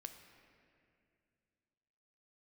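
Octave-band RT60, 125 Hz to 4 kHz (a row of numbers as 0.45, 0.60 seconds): 3.0, 2.9, 2.6, 2.2, 2.3, 1.8 seconds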